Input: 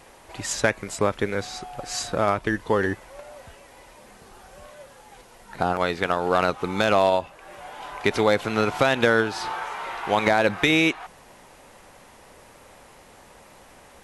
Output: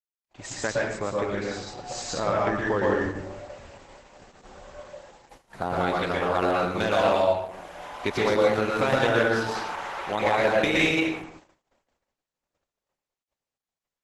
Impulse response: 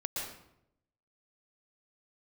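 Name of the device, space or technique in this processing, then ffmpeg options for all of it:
speakerphone in a meeting room: -filter_complex "[1:a]atrim=start_sample=2205[link_01];[0:a][link_01]afir=irnorm=-1:irlink=0,dynaudnorm=framelen=260:gausssize=21:maxgain=13dB,agate=range=-51dB:threshold=-40dB:ratio=16:detection=peak,volume=-6.5dB" -ar 48000 -c:a libopus -b:a 12k

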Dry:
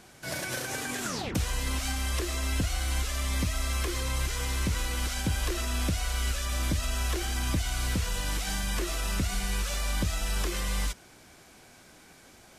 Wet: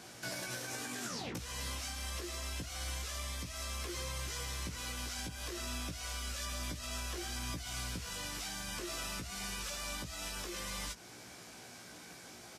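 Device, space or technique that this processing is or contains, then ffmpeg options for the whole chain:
broadcast voice chain: -filter_complex "[0:a]highpass=60,highpass=71,deesser=0.55,acompressor=threshold=-39dB:ratio=5,equalizer=frequency=5300:width_type=o:width=0.79:gain=4,alimiter=level_in=7.5dB:limit=-24dB:level=0:latency=1:release=355,volume=-7.5dB,asplit=2[link_01][link_02];[link_02]adelay=17,volume=-4dB[link_03];[link_01][link_03]amix=inputs=2:normalize=0"

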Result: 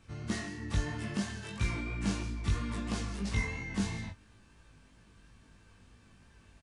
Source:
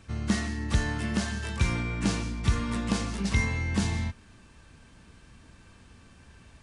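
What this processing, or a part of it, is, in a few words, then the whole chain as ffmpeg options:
double-tracked vocal: -filter_complex "[0:a]asplit=2[link_01][link_02];[link_02]adelay=20,volume=-11dB[link_03];[link_01][link_03]amix=inputs=2:normalize=0,flanger=delay=17.5:depth=3.3:speed=3,volume=-4dB"

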